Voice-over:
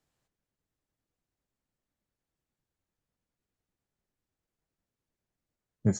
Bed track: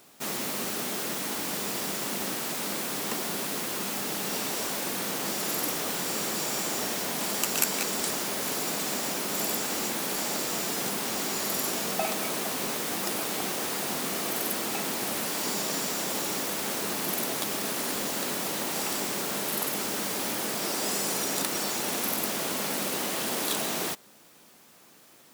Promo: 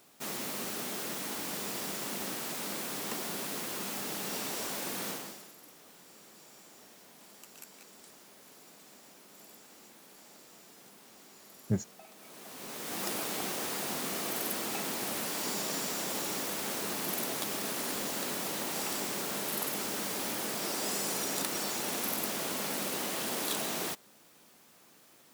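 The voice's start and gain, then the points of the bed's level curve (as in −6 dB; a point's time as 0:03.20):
5.85 s, −4.0 dB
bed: 0:05.10 −5.5 dB
0:05.54 −25 dB
0:12.11 −25 dB
0:13.02 −4.5 dB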